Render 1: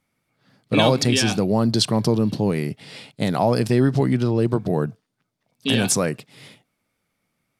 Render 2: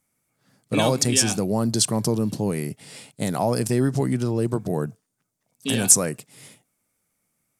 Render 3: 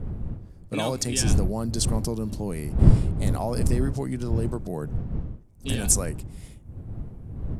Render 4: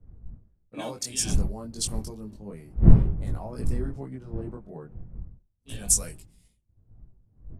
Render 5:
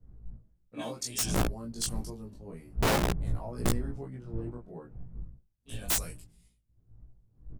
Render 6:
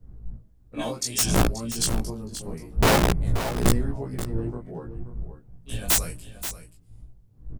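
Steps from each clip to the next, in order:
resonant high shelf 5.5 kHz +10 dB, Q 1.5; trim -3.5 dB
wind noise 110 Hz -19 dBFS; trim -6.5 dB
chorus voices 4, 0.29 Hz, delay 21 ms, depth 3.4 ms; three bands expanded up and down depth 100%; trim -6 dB
integer overflow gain 17 dB; doubling 17 ms -2.5 dB; trim -5 dB
delay 530 ms -11.5 dB; trim +7.5 dB

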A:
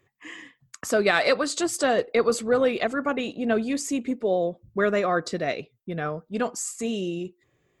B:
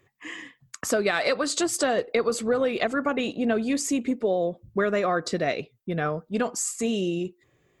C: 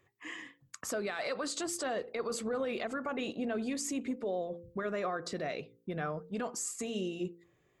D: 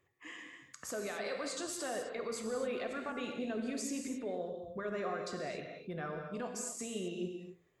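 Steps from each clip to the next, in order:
compression, threshold -23 dBFS, peak gain reduction 7.5 dB; trim +3 dB
peak limiter -21 dBFS, peak gain reduction 9.5 dB; peaking EQ 1 kHz +2.5 dB 1.4 oct; de-hum 57.17 Hz, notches 9; trim -6.5 dB
gated-style reverb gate 290 ms flat, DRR 3 dB; trim -5 dB

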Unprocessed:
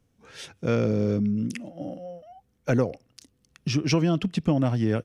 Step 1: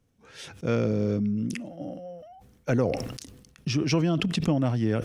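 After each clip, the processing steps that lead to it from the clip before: decay stretcher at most 52 dB/s; trim -2 dB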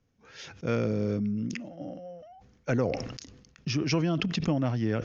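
rippled Chebyshev low-pass 6.8 kHz, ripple 3 dB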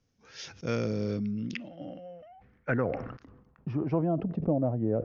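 low-pass sweep 5.7 kHz -> 600 Hz, 0.85–4.36 s; trim -2.5 dB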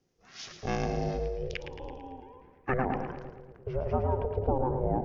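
two-band feedback delay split 300 Hz, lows 225 ms, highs 111 ms, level -8 dB; ring modulator 260 Hz; trim +2 dB

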